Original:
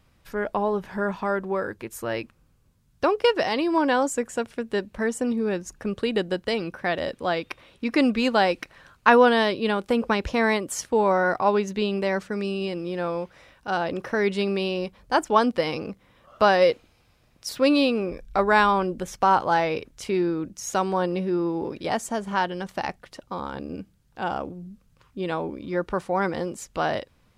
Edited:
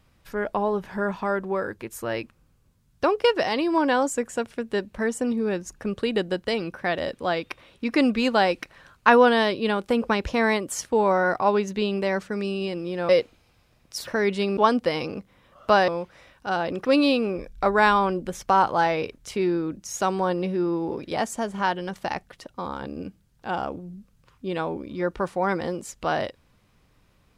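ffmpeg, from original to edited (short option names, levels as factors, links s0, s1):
-filter_complex "[0:a]asplit=6[s0][s1][s2][s3][s4][s5];[s0]atrim=end=13.092[s6];[s1]atrim=start=16.598:end=17.582[s7];[s2]atrim=start=14.058:end=14.562[s8];[s3]atrim=start=15.288:end=16.602[s9];[s4]atrim=start=13.088:end=14.062[s10];[s5]atrim=start=17.578[s11];[s6][s7]acrossfade=d=0.004:c1=hsin:c2=hsin[s12];[s12][s8]acrossfade=d=0.004:c1=hsin:c2=hsin[s13];[s13][s9]acrossfade=d=0.004:c1=hsin:c2=hsin[s14];[s14][s10]acrossfade=d=0.004:c1=hsin:c2=hsin[s15];[s15][s11]acrossfade=d=0.004:c1=hsin:c2=hsin"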